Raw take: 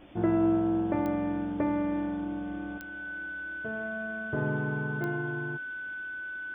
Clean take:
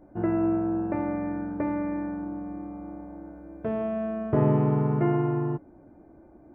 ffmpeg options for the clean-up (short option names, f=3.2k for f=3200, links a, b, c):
-af "adeclick=t=4,bandreject=f=1.5k:w=30,afwtdn=0.0022,asetnsamples=n=441:p=0,asendcmd='2.78 volume volume 9dB',volume=0dB"